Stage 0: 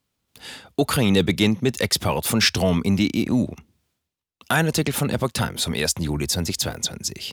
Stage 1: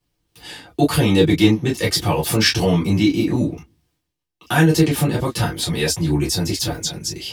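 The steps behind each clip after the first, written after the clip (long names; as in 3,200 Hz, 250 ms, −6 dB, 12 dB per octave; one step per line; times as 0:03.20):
convolution reverb, pre-delay 3 ms, DRR −5.5 dB
level −6.5 dB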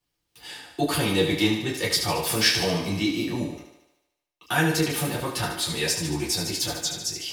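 low-shelf EQ 430 Hz −8.5 dB
feedback echo with a high-pass in the loop 74 ms, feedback 61%, high-pass 230 Hz, level −7 dB
level −3.5 dB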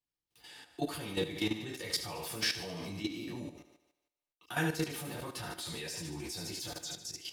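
output level in coarse steps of 11 dB
level −8 dB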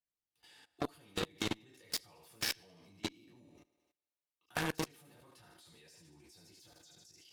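output level in coarse steps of 20 dB
harmonic generator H 3 −19 dB, 7 −17 dB, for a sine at −28 dBFS
level +9 dB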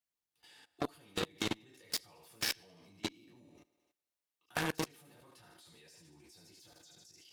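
low-shelf EQ 76 Hz −5.5 dB
level +1 dB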